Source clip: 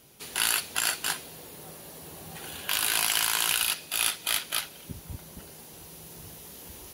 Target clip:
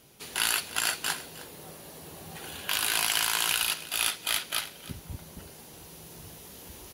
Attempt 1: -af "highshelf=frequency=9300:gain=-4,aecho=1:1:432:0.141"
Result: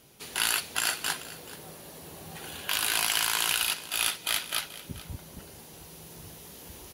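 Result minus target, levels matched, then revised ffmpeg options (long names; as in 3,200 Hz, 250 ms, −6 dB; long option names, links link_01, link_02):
echo 120 ms late
-af "highshelf=frequency=9300:gain=-4,aecho=1:1:312:0.141"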